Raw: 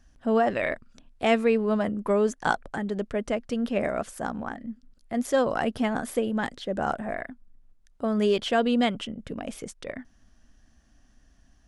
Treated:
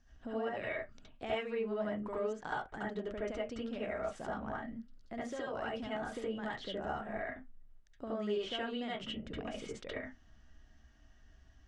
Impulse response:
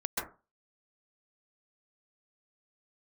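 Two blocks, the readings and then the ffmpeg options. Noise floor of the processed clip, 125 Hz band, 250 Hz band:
-63 dBFS, -11.5 dB, -14.0 dB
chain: -filter_complex "[0:a]lowpass=f=7100:w=0.5412,lowpass=f=7100:w=1.3066,acompressor=threshold=0.0224:ratio=5[s0];[1:a]atrim=start_sample=2205,asetrate=83790,aresample=44100[s1];[s0][s1]afir=irnorm=-1:irlink=0,volume=0.794"

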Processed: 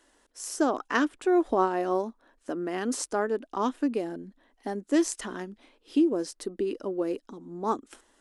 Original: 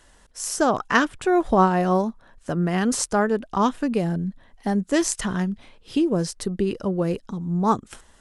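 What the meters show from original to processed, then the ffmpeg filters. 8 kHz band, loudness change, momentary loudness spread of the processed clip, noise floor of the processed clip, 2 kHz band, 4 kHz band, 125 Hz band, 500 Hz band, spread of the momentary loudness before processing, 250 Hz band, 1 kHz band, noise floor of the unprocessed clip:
-8.0 dB, -5.5 dB, 14 LU, -69 dBFS, -8.0 dB, -8.0 dB, -19.5 dB, -4.5 dB, 10 LU, -5.5 dB, -7.5 dB, -56 dBFS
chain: -af "lowshelf=f=210:t=q:w=3:g=-11,volume=0.398"

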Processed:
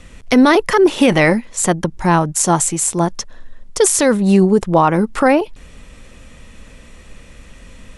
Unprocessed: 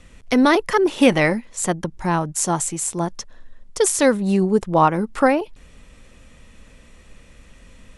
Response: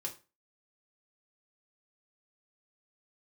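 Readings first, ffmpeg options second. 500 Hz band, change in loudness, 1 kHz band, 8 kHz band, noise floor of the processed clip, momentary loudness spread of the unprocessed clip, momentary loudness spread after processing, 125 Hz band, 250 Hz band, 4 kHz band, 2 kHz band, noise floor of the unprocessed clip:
+4.5 dB, +5.0 dB, +4.0 dB, +6.0 dB, -42 dBFS, 9 LU, 7 LU, +6.5 dB, +5.5 dB, +4.5 dB, +4.5 dB, -49 dBFS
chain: -af "alimiter=limit=0.316:level=0:latency=1:release=26,volume=2.24"

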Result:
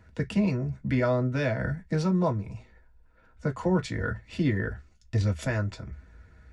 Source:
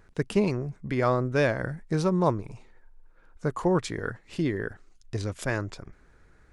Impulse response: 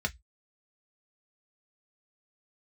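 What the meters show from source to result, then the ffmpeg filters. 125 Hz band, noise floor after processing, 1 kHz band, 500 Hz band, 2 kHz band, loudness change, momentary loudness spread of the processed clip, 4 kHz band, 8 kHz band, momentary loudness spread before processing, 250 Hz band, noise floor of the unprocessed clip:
+2.5 dB, -59 dBFS, -4.5 dB, -3.0 dB, -1.0 dB, 0.0 dB, 13 LU, -1.5 dB, -4.0 dB, 11 LU, +1.0 dB, -59 dBFS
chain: -filter_complex "[0:a]alimiter=limit=0.141:level=0:latency=1:release=301[s0];[1:a]atrim=start_sample=2205[s1];[s0][s1]afir=irnorm=-1:irlink=0,volume=0.631"

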